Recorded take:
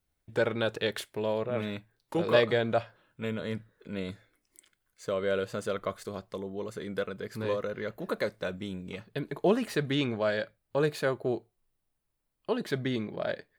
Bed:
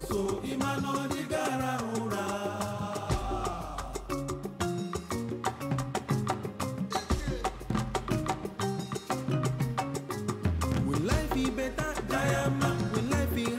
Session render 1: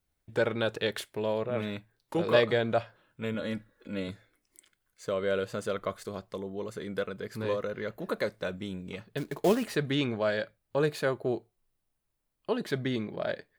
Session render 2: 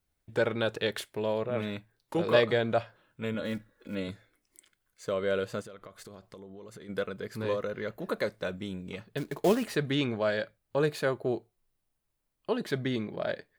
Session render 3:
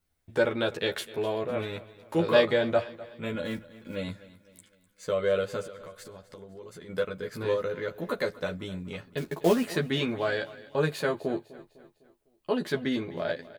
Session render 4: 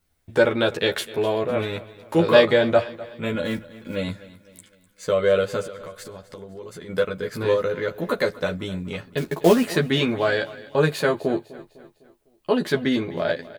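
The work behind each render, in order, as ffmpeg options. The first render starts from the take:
ffmpeg -i in.wav -filter_complex "[0:a]asettb=1/sr,asplit=3[link_01][link_02][link_03];[link_01]atrim=end=3.344[link_04];[link_02]atrim=start=3.34:end=4.08,asetpts=PTS-STARTPTS,afade=type=in:duration=0.004:curve=qsin,afade=type=out:start_time=0.736:duration=0.004:curve=qsin,aecho=1:1:3.6:0.65,atrim=end_sample=32634[link_05];[link_03]atrim=start=4.076[link_06];[link_04][link_05]acrossfade=duration=0.004:curve1=hsin:curve2=qsin[link_07];[link_07][link_06]acrossfade=duration=0.004:curve1=qsin:curve2=hsin,asettb=1/sr,asplit=3[link_08][link_09][link_10];[link_08]atrim=end=9.174[link_11];[link_09]atrim=start=9.17:end=9.68,asetpts=PTS-STARTPTS,afade=type=in:duration=0.004:curve=qsin,afade=type=out:start_time=0.506:duration=0.004:curve=qsin,acrusher=bits=4:mode=log:mix=0:aa=0.000001[link_12];[link_10]atrim=start=9.676[link_13];[link_11][link_12]acrossfade=duration=0.004:curve1=hsin:curve2=qsin[link_14];[link_14][link_13]acrossfade=duration=0.004:curve1=qsin:curve2=hsin" out.wav
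ffmpeg -i in.wav -filter_complex "[0:a]asplit=3[link_01][link_02][link_03];[link_01]afade=type=out:start_time=3.44:duration=0.02[link_04];[link_02]acrusher=bits=7:mode=log:mix=0:aa=0.000001,afade=type=in:start_time=3.44:duration=0.02,afade=type=out:start_time=3.94:duration=0.02[link_05];[link_03]afade=type=in:start_time=3.94:duration=0.02[link_06];[link_04][link_05][link_06]amix=inputs=3:normalize=0,asplit=3[link_07][link_08][link_09];[link_07]afade=type=out:start_time=5.61:duration=0.02[link_10];[link_08]acompressor=threshold=-43dB:ratio=10:attack=3.2:release=140:knee=1:detection=peak,afade=type=in:start_time=5.61:duration=0.02,afade=type=out:start_time=6.88:duration=0.02[link_11];[link_09]afade=type=in:start_time=6.88:duration=0.02[link_12];[link_10][link_11][link_12]amix=inputs=3:normalize=0" out.wav
ffmpeg -i in.wav -filter_complex "[0:a]asplit=2[link_01][link_02];[link_02]adelay=12,volume=-2.5dB[link_03];[link_01][link_03]amix=inputs=2:normalize=0,aecho=1:1:252|504|756|1008:0.119|0.0547|0.0251|0.0116" out.wav
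ffmpeg -i in.wav -af "volume=7dB,alimiter=limit=-3dB:level=0:latency=1" out.wav

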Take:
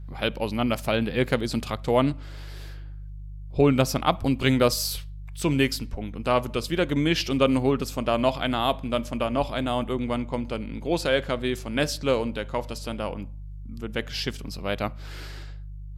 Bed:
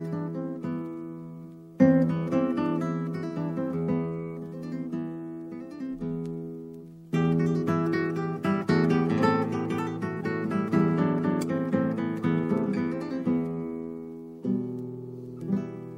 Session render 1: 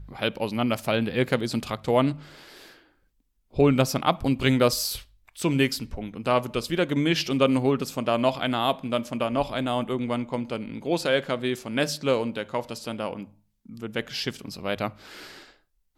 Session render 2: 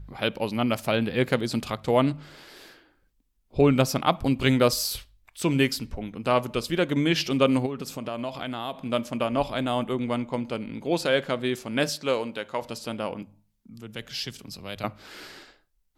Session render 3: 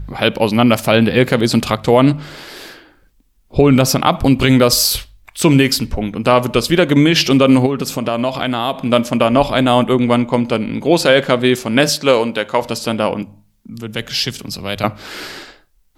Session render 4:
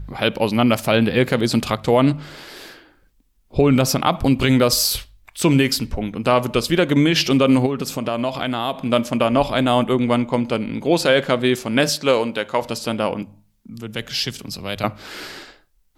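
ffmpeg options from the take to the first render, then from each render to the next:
ffmpeg -i in.wav -af "bandreject=frequency=50:width_type=h:width=4,bandreject=frequency=100:width_type=h:width=4,bandreject=frequency=150:width_type=h:width=4" out.wav
ffmpeg -i in.wav -filter_complex "[0:a]asplit=3[link_01][link_02][link_03];[link_01]afade=type=out:start_time=7.65:duration=0.02[link_04];[link_02]acompressor=threshold=-30dB:ratio=3:attack=3.2:release=140:knee=1:detection=peak,afade=type=in:start_time=7.65:duration=0.02,afade=type=out:start_time=8.85:duration=0.02[link_05];[link_03]afade=type=in:start_time=8.85:duration=0.02[link_06];[link_04][link_05][link_06]amix=inputs=3:normalize=0,asettb=1/sr,asplit=3[link_07][link_08][link_09];[link_07]atrim=end=11.894[link_10];[link_08]atrim=start=11.89:end=12.62,asetpts=PTS-STARTPTS,afade=type=in:duration=0.004:curve=qsin,afade=type=out:start_time=0.726:duration=0.004:curve=qsin,lowshelf=frequency=260:gain=-9.5[link_11];[link_09]atrim=start=12.616[link_12];[link_10][link_11]acrossfade=duration=0.004:curve1=hsin:curve2=qsin[link_13];[link_13][link_12]acrossfade=duration=0.004:curve1=qsin:curve2=hsin,asettb=1/sr,asplit=3[link_14][link_15][link_16];[link_14]atrim=end=13.224[link_17];[link_15]atrim=start=13.22:end=14.84,asetpts=PTS-STARTPTS,afade=type=in:duration=0.004:curve=qsin,afade=type=out:start_time=1.616:duration=0.004:curve=qsin,acrossover=split=130|3000[link_18][link_19][link_20];[link_19]acompressor=threshold=-52dB:ratio=1.5:attack=3.2:release=140:knee=2.83:detection=peak[link_21];[link_18][link_21][link_20]amix=inputs=3:normalize=0[link_22];[link_16]atrim=start=14.836[link_23];[link_17][link_22]acrossfade=duration=0.004:curve1=hsin:curve2=qsin[link_24];[link_24][link_23]acrossfade=duration=0.004:curve1=qsin:curve2=hsin" out.wav
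ffmpeg -i in.wav -af "alimiter=level_in=14dB:limit=-1dB:release=50:level=0:latency=1" out.wav
ffmpeg -i in.wav -af "volume=-4.5dB" out.wav

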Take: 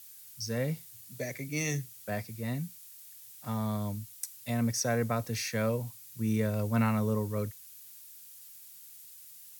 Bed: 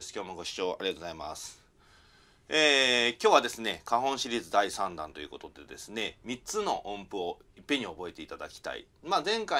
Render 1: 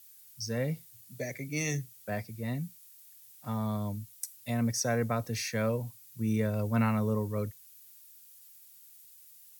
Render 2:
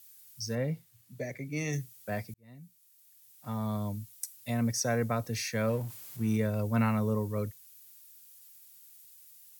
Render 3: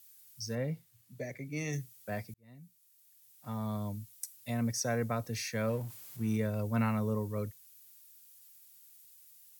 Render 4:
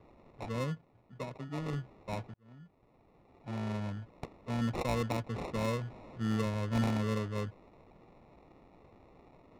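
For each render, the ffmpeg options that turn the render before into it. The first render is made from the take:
ffmpeg -i in.wav -af "afftdn=noise_reduction=6:noise_floor=-51" out.wav
ffmpeg -i in.wav -filter_complex "[0:a]asettb=1/sr,asplit=3[link_01][link_02][link_03];[link_01]atrim=end=0.554[link_04];[link_02]atrim=start=0.55:end=1.73,asetpts=PTS-STARTPTS,afade=type=in:duration=0.004:curve=qsin,afade=type=out:start_time=1.176:duration=0.004:curve=qsin,highshelf=frequency=3500:gain=-10[link_05];[link_03]atrim=start=1.726[link_06];[link_04][link_05]acrossfade=duration=0.004:curve1=hsin:curve2=qsin[link_07];[link_07][link_06]acrossfade=duration=0.004:curve1=qsin:curve2=hsin,asettb=1/sr,asplit=3[link_08][link_09][link_10];[link_08]atrim=end=5.684[link_11];[link_09]atrim=start=5.68:end=6.37,asetpts=PTS-STARTPTS,afade=type=in:duration=0.004:curve=qsin,afade=type=out:start_time=0.686:duration=0.004:curve=qsin,aeval=exprs='val(0)+0.5*0.00562*sgn(val(0))':channel_layout=same[link_12];[link_10]atrim=start=6.366[link_13];[link_11][link_12]acrossfade=duration=0.004:curve1=hsin:curve2=qsin[link_14];[link_14][link_13]acrossfade=duration=0.004:curve1=qsin:curve2=hsin,asplit=2[link_15][link_16];[link_15]atrim=end=2.34,asetpts=PTS-STARTPTS,afade=type=out:start_time=2.336:duration=0.004:curve=hsin[link_17];[link_16]atrim=start=2.34,asetpts=PTS-STARTPTS,afade=type=in:duration=1.44[link_18];[link_17][link_18]concat=n=2:v=0:a=1" out.wav
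ffmpeg -i in.wav -af "volume=-3dB" out.wav
ffmpeg -i in.wav -af "acrusher=samples=28:mix=1:aa=0.000001,adynamicsmooth=sensitivity=5.5:basefreq=2500" out.wav

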